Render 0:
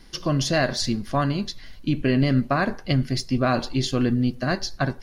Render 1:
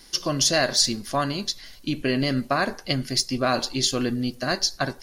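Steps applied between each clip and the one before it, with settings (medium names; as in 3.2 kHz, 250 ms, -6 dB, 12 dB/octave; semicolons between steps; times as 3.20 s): tone controls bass -8 dB, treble +11 dB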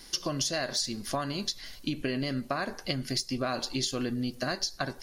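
compression, threshold -28 dBFS, peak gain reduction 12.5 dB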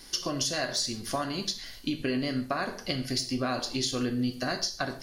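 gated-style reverb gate 170 ms falling, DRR 5.5 dB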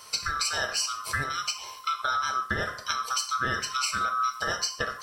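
split-band scrambler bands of 1 kHz; trim +1.5 dB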